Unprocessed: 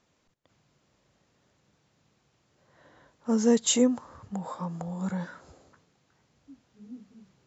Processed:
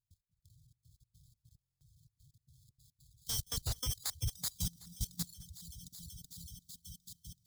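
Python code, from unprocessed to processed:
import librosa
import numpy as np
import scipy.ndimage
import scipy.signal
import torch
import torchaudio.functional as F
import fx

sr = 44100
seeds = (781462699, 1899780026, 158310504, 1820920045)

y = fx.sample_hold(x, sr, seeds[0], rate_hz=2900.0, jitter_pct=0)
y = fx.brickwall_bandstop(y, sr, low_hz=150.0, high_hz=3100.0)
y = fx.step_gate(y, sr, bpm=145, pattern='.x.xxxx.xx.xx', floor_db=-24.0, edge_ms=4.5)
y = fx.echo_alternate(y, sr, ms=189, hz=1000.0, feedback_pct=88, wet_db=-8)
y = 10.0 ** (-35.0 / 20.0) * np.tanh(y / 10.0 ** (-35.0 / 20.0))
y = fx.highpass(y, sr, hz=50.0, slope=6)
y = fx.low_shelf(y, sr, hz=72.0, db=10.5)
y = fx.level_steps(y, sr, step_db=15)
y = fx.peak_eq(y, sr, hz=3300.0, db=-10.5, octaves=0.88)
y = y + 10.0 ** (-15.0 / 20.0) * np.pad(y, (int(206 * sr / 1000.0), 0))[:len(y)]
y = fx.dereverb_blind(y, sr, rt60_s=1.2)
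y = fx.buffer_glitch(y, sr, at_s=(1.6,), block=1024, repeats=8)
y = y * librosa.db_to_amplitude(13.5)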